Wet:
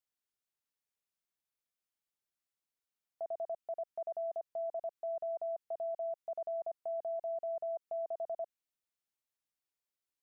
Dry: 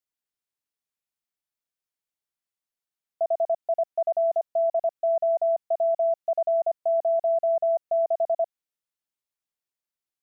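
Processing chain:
dynamic equaliser 720 Hz, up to −4 dB, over −34 dBFS, Q 2.2
brickwall limiter −30.5 dBFS, peak gain reduction 10 dB
level −3 dB

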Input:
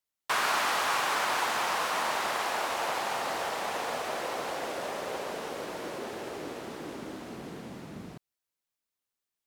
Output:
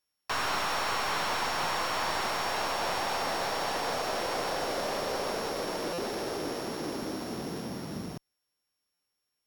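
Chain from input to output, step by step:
samples sorted by size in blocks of 8 samples
in parallel at +1 dB: brickwall limiter −25 dBFS, peak gain reduction 9 dB
on the sum: asymmetric clip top −29.5 dBFS
buffer that repeats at 0:05.93/0:08.94, samples 256, times 8
slew-rate limiting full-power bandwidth 120 Hz
level −1 dB

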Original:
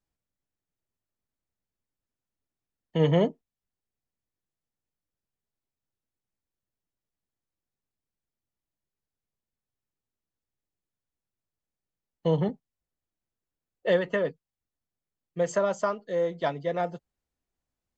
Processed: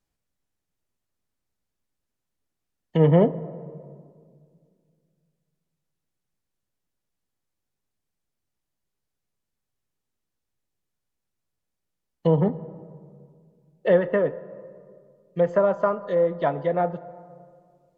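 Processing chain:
treble cut that deepens with the level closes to 1,500 Hz, closed at −26 dBFS
on a send: graphic EQ with 15 bands 100 Hz +5 dB, 250 Hz −7 dB, 2,500 Hz −6 dB, 6,300 Hz +6 dB + convolution reverb RT60 2.1 s, pre-delay 4 ms, DRR 14.5 dB
on the sum: level +5 dB

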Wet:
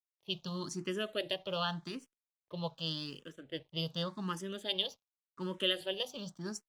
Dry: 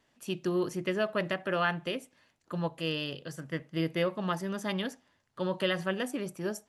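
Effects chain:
low-pass that shuts in the quiet parts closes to 1,300 Hz, open at −26.5 dBFS
high shelf with overshoot 2,700 Hz +7 dB, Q 3
notch filter 720 Hz, Q 12
dead-zone distortion −58 dBFS
frequency shifter mixed with the dry sound +0.87 Hz
level −3 dB

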